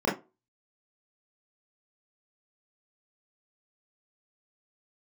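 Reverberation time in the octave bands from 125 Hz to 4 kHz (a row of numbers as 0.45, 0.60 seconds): 0.30, 0.25, 0.30, 0.25, 0.20, 0.15 seconds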